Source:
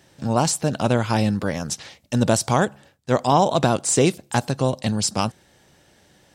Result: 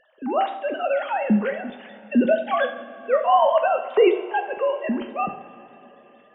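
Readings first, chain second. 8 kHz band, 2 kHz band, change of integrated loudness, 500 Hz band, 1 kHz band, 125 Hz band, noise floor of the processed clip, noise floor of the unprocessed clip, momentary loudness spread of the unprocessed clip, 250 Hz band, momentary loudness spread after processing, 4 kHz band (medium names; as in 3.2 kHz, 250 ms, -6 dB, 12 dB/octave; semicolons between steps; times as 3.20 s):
under -40 dB, +1.0 dB, -0.5 dB, +2.0 dB, +1.0 dB, under -15 dB, -53 dBFS, -57 dBFS, 9 LU, -2.0 dB, 11 LU, -9.0 dB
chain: formants replaced by sine waves; two-slope reverb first 0.57 s, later 4.1 s, from -17 dB, DRR 5 dB; trim -2 dB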